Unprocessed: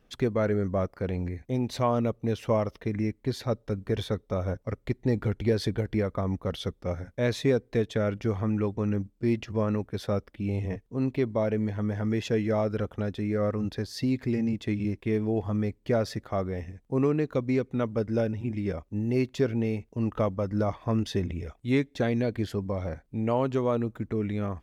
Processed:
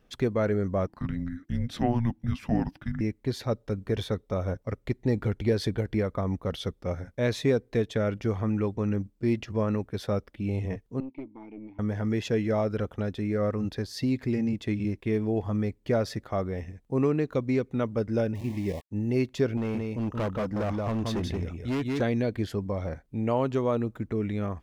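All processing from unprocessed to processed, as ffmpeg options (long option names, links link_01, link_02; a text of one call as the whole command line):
ffmpeg -i in.wav -filter_complex "[0:a]asettb=1/sr,asplit=3[link_01][link_02][link_03];[link_01]atrim=end=0.874[link_04];[link_02]atrim=start=0.87:end=3.01,asetpts=PTS-STARTPTS,afade=type=in:duration=0.004:curve=qsin,afade=type=out:start_time=2.136:duration=0.004:curve=qsin,bass=frequency=250:gain=-2,treble=frequency=4000:gain=-5,afreqshift=-350[link_05];[link_03]atrim=start=3.006[link_06];[link_04][link_05]acrossfade=duration=0.004:curve1=hsin:curve2=qsin[link_07];[link_07][link_06]acrossfade=duration=0.004:curve1=qsin:curve2=hsin,asettb=1/sr,asplit=3[link_08][link_09][link_10];[link_08]atrim=end=11.004[link_11];[link_09]atrim=start=11:end=11.79,asetpts=PTS-STARTPTS,afade=type=in:duration=0.004:curve=qsin,afade=type=out:start_time=0.786:duration=0.004:curve=qsin,asplit=3[link_12][link_13][link_14];[link_12]bandpass=frequency=300:width_type=q:width=8,volume=0dB[link_15];[link_13]bandpass=frequency=870:width_type=q:width=8,volume=-6dB[link_16];[link_14]bandpass=frequency=2240:width_type=q:width=8,volume=-9dB[link_17];[link_15][link_16][link_17]amix=inputs=3:normalize=0,aeval=exprs='(tanh(31.6*val(0)+0.5)-tanh(0.5))/31.6':channel_layout=same[link_18];[link_10]atrim=start=11.786[link_19];[link_11][link_18]acrossfade=duration=0.004:curve1=hsin:curve2=qsin[link_20];[link_20][link_19]acrossfade=duration=0.004:curve1=qsin:curve2=hsin,asettb=1/sr,asplit=3[link_21][link_22][link_23];[link_21]atrim=end=18.354[link_24];[link_22]atrim=start=18.35:end=18.91,asetpts=PTS-STARTPTS,afade=type=in:duration=0.004:curve=qsin,afade=type=out:start_time=0.556:duration=0.004:curve=qsin,aeval=exprs='val(0)*gte(abs(val(0)),0.00944)':channel_layout=same,asuperstop=centerf=1400:order=12:qfactor=2.4[link_25];[link_23]atrim=start=18.906[link_26];[link_24][link_25]acrossfade=duration=0.004:curve1=hsin:curve2=qsin[link_27];[link_27][link_26]acrossfade=duration=0.004:curve1=qsin:curve2=hsin,asettb=1/sr,asplit=3[link_28][link_29][link_30];[link_28]atrim=end=19.574[link_31];[link_29]atrim=start=19.57:end=22.01,asetpts=PTS-STARTPTS,afade=type=in:duration=0.004:curve=qsin,afade=type=out:start_time=2.436:duration=0.004:curve=qsin,aecho=1:1:176:0.631,atrim=end_sample=107604,asoftclip=type=hard:threshold=-25.5dB[link_32];[link_30]atrim=start=22.006[link_33];[link_31][link_32]acrossfade=duration=0.004:curve1=hsin:curve2=qsin[link_34];[link_34][link_33]acrossfade=duration=0.004:curve1=qsin:curve2=hsin" out.wav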